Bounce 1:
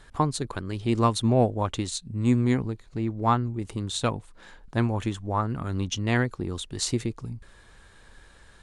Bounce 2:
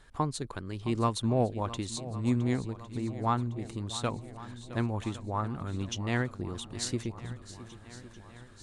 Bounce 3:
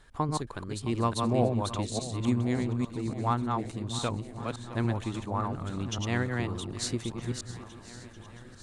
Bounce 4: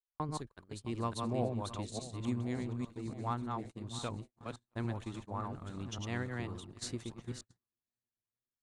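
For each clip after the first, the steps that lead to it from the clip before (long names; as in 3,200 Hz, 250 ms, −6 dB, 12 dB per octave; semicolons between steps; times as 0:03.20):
feedback echo with a long and a short gap by turns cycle 1,108 ms, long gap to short 1.5 to 1, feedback 52%, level −15.5 dB; level −6 dB
delay that plays each chunk backwards 285 ms, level −3 dB
noise gate −35 dBFS, range −47 dB; level −8.5 dB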